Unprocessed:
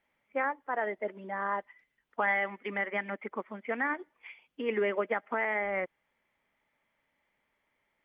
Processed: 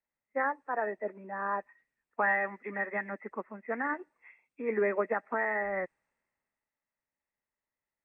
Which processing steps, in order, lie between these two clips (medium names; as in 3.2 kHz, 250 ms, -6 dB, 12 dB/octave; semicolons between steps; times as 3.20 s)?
knee-point frequency compression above 1.7 kHz 1.5:1; three bands expanded up and down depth 40%